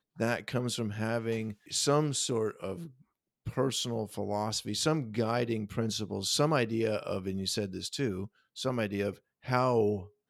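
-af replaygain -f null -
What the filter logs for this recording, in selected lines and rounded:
track_gain = +11.8 dB
track_peak = 0.164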